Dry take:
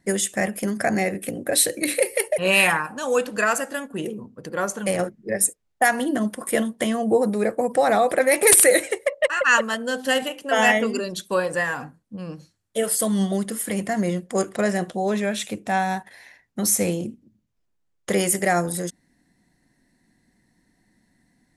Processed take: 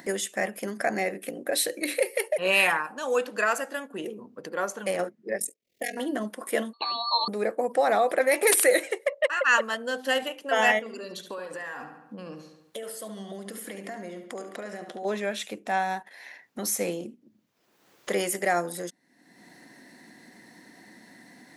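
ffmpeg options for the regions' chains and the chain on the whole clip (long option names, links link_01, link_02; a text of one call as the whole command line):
ffmpeg -i in.wav -filter_complex "[0:a]asettb=1/sr,asplit=3[link_01][link_02][link_03];[link_01]atrim=end=5.384[link_04];[link_02]atrim=start=5.38:end=5.97,asetpts=PTS-STARTPTS,afade=type=in:duration=0.004:curve=qsin,afade=type=out:start_time=0.586:duration=0.004:curve=qsin,asuperstop=centerf=1100:order=8:qfactor=0.81,acompressor=mode=upward:threshold=-41dB:ratio=2.5:attack=3.2:release=140:knee=2.83:detection=peak,aeval=exprs='val(0)*sin(2*PI*21*n/s)':channel_layout=same[link_05];[link_03]atrim=start=5.966[link_06];[link_04][link_05]acrossfade=duration=0.004:curve1=hsin:curve2=qsin[link_07];[link_07][link_06]acrossfade=duration=0.004:curve1=qsin:curve2=hsin,asettb=1/sr,asplit=3[link_08][link_09][link_10];[link_08]atrim=end=6.734[link_11];[link_09]atrim=start=6.73:end=7.28,asetpts=PTS-STARTPTS,afade=type=in:duration=0.004:curve=qsin,afade=type=out:start_time=0.546:duration=0.004:curve=qsin,lowpass=frequency=2600:width_type=q:width=0.5098,lowpass=frequency=2600:width_type=q:width=0.6013,lowpass=frequency=2600:width_type=q:width=0.9,lowpass=frequency=2600:width_type=q:width=2.563,afreqshift=-3000,aeval=exprs='val(0)*sin(2*PI*1600*n/s)':channel_layout=same[link_12];[link_10]atrim=start=7.276[link_13];[link_11][link_12]acrossfade=duration=0.004:curve1=hsin:curve2=qsin[link_14];[link_14][link_13]acrossfade=duration=0.004:curve1=qsin:curve2=hsin,asettb=1/sr,asplit=3[link_15][link_16][link_17];[link_15]atrim=end=10.794[link_18];[link_16]atrim=start=10.79:end=15.05,asetpts=PTS-STARTPTS,afade=type=in:duration=0.004:curve=qsin,afade=type=out:start_time=4.256:duration=0.004:curve=qsin,acompressor=threshold=-30dB:ratio=6:attack=3.2:release=140:knee=1:detection=peak,asplit=2[link_19][link_20];[link_20]adelay=71,lowpass=frequency=4200:poles=1,volume=-8dB,asplit=2[link_21][link_22];[link_22]adelay=71,lowpass=frequency=4200:poles=1,volume=0.45,asplit=2[link_23][link_24];[link_24]adelay=71,lowpass=frequency=4200:poles=1,volume=0.45,asplit=2[link_25][link_26];[link_26]adelay=71,lowpass=frequency=4200:poles=1,volume=0.45,asplit=2[link_27][link_28];[link_28]adelay=71,lowpass=frequency=4200:poles=1,volume=0.45[link_29];[link_19][link_21][link_23][link_25][link_27][link_29]amix=inputs=6:normalize=0,atrim=end_sample=187866[link_30];[link_17]atrim=start=15.046[link_31];[link_18][link_30]acrossfade=duration=0.004:curve1=hsin:curve2=qsin[link_32];[link_32][link_31]acrossfade=duration=0.004:curve1=qsin:curve2=hsin,highpass=300,equalizer=frequency=8800:width=1.2:gain=-6.5,acompressor=mode=upward:threshold=-30dB:ratio=2.5,volume=-3.5dB" out.wav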